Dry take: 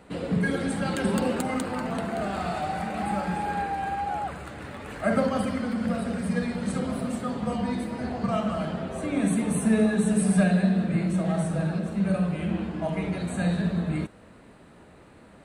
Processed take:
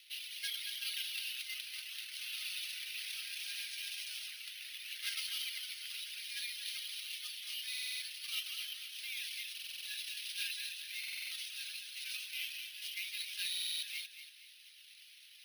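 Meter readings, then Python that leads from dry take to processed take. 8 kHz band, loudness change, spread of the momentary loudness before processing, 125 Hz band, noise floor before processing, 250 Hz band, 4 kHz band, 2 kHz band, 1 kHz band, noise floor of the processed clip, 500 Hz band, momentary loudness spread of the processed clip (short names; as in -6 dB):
-4.5 dB, -12.5 dB, 8 LU, under -40 dB, -51 dBFS, under -40 dB, +6.5 dB, -7.5 dB, -38.5 dB, -58 dBFS, under -40 dB, 6 LU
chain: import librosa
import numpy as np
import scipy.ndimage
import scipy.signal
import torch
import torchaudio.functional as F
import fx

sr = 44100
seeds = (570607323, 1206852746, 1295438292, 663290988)

y = fx.cvsd(x, sr, bps=32000)
y = fx.dereverb_blind(y, sr, rt60_s=0.56)
y = scipy.signal.sosfilt(scipy.signal.butter(6, 2800.0, 'highpass', fs=sr, output='sos'), y)
y = fx.high_shelf(y, sr, hz=4700.0, db=-11.0)
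y = fx.rider(y, sr, range_db=4, speed_s=2.0)
y = fx.quant_float(y, sr, bits=4)
y = fx.air_absorb(y, sr, metres=55.0)
y = fx.echo_feedback(y, sr, ms=233, feedback_pct=35, wet_db=-10.0)
y = np.repeat(scipy.signal.resample_poly(y, 1, 3), 3)[:len(y)]
y = fx.buffer_glitch(y, sr, at_s=(7.69, 9.53, 10.99, 13.5), block=2048, repeats=6)
y = y * 10.0 ** (12.0 / 20.0)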